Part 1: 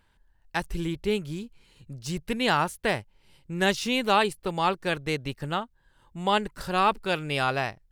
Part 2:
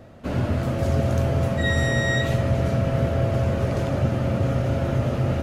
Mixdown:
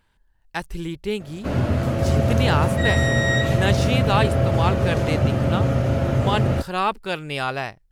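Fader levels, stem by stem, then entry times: +0.5 dB, +2.5 dB; 0.00 s, 1.20 s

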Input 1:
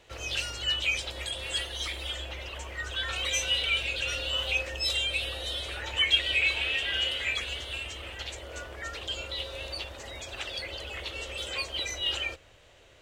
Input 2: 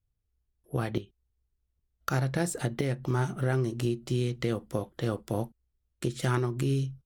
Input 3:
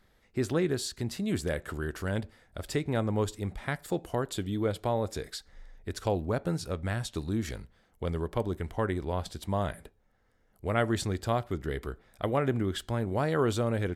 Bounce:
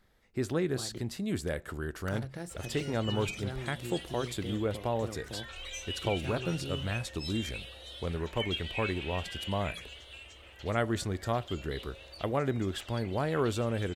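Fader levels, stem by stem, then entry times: -12.5 dB, -12.5 dB, -2.5 dB; 2.40 s, 0.00 s, 0.00 s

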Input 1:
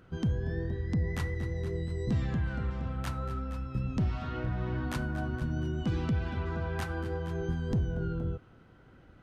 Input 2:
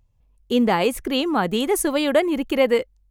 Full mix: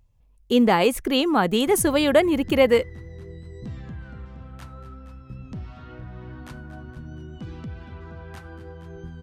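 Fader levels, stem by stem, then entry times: -6.0 dB, +1.0 dB; 1.55 s, 0.00 s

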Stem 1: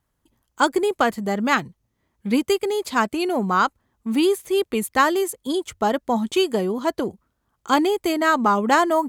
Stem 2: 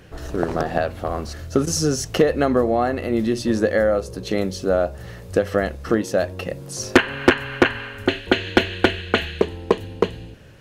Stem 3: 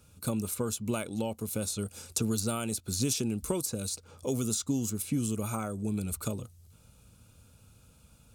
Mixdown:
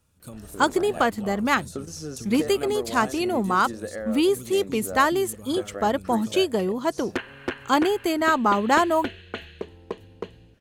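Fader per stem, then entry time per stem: -2.0 dB, -15.0 dB, -9.5 dB; 0.00 s, 0.20 s, 0.00 s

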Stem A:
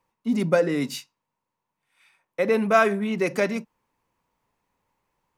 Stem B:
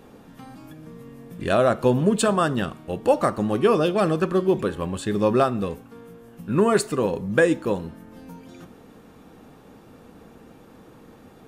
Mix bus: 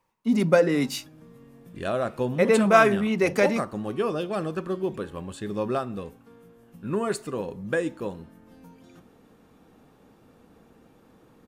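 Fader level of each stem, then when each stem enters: +1.5 dB, -8.0 dB; 0.00 s, 0.35 s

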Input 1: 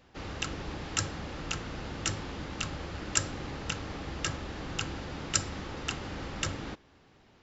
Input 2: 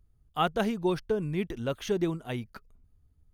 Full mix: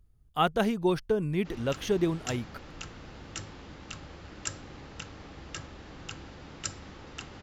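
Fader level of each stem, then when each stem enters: -7.5 dB, +1.5 dB; 1.30 s, 0.00 s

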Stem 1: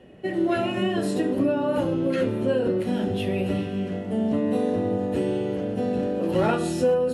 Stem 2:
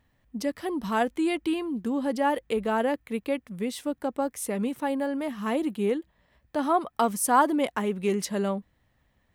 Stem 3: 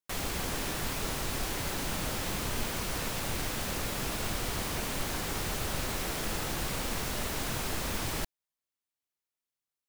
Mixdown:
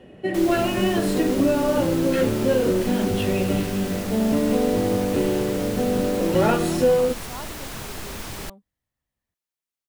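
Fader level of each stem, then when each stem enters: +3.0 dB, -18.5 dB, -0.5 dB; 0.00 s, 0.00 s, 0.25 s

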